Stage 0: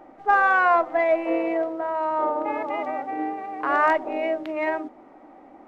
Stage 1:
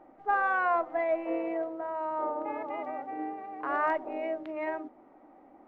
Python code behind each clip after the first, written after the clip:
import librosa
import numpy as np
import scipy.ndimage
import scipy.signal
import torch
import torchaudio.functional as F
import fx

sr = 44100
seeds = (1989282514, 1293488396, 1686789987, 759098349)

y = fx.high_shelf(x, sr, hz=3600.0, db=-12.0)
y = y * 10.0 ** (-7.5 / 20.0)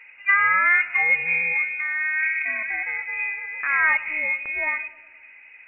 y = fx.freq_invert(x, sr, carrier_hz=2800)
y = fx.echo_filtered(y, sr, ms=104, feedback_pct=66, hz=1500.0, wet_db=-16.0)
y = y * 10.0 ** (8.5 / 20.0)